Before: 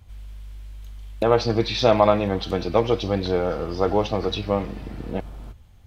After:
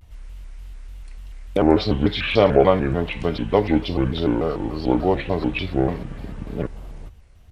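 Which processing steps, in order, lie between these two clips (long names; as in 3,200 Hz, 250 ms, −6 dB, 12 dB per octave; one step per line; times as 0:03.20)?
change of speed 0.78×
pitch modulation by a square or saw wave square 3.4 Hz, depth 250 cents
level +1.5 dB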